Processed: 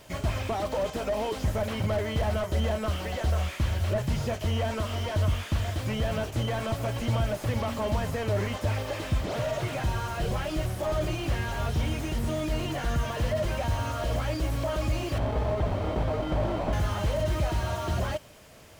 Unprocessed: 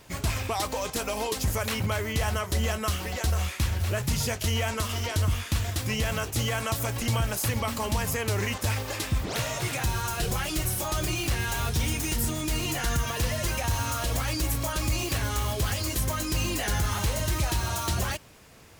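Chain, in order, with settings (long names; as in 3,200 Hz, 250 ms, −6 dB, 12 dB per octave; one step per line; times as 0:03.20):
0:15.18–0:16.73: sample-rate reduction 1,700 Hz, jitter 0%
hollow resonant body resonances 610/3,100 Hz, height 10 dB, ringing for 40 ms
slew-rate limiting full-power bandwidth 37 Hz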